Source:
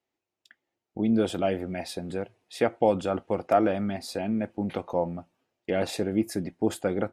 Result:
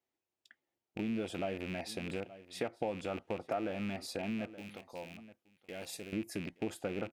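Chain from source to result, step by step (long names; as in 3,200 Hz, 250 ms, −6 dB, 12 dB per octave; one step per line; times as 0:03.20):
loose part that buzzes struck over −34 dBFS, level −25 dBFS
0:04.55–0:06.13: first-order pre-emphasis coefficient 0.8
single-tap delay 873 ms −21.5 dB
downward compressor 3 to 1, threshold −29 dBFS, peak gain reduction 10 dB
level −5.5 dB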